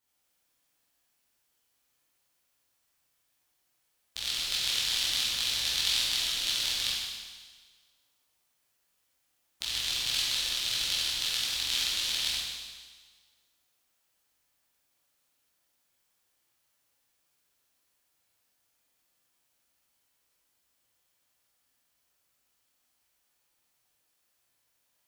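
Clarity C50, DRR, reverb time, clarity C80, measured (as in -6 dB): -2.5 dB, -9.0 dB, 1.5 s, 0.0 dB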